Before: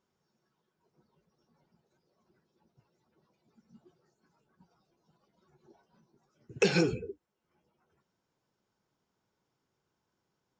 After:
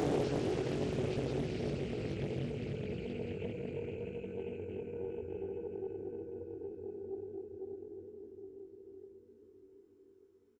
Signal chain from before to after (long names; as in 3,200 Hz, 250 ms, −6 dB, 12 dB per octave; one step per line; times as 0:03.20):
extreme stretch with random phases 31×, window 0.25 s, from 0:06.90
double-tracking delay 21 ms −3 dB
delay with a low-pass on its return 1,191 ms, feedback 36%, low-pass 790 Hz, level −12 dB
highs frequency-modulated by the lows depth 0.73 ms
level −2 dB